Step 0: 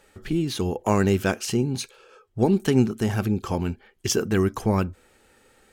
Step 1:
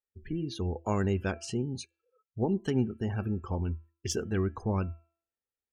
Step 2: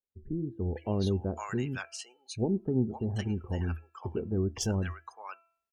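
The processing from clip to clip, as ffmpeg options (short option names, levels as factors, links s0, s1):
-af "afftdn=nr=35:nf=-36,equalizer=f=80:t=o:w=0.34:g=13.5,bandreject=f=335.2:t=h:w=4,bandreject=f=670.4:t=h:w=4,bandreject=f=1005.6:t=h:w=4,bandreject=f=1340.8:t=h:w=4,bandreject=f=1676:t=h:w=4,bandreject=f=2011.2:t=h:w=4,bandreject=f=2346.4:t=h:w=4,bandreject=f=2681.6:t=h:w=4,bandreject=f=3016.8:t=h:w=4,volume=0.355"
-filter_complex "[0:a]acrossover=split=830[s0][s1];[s1]adelay=510[s2];[s0][s2]amix=inputs=2:normalize=0"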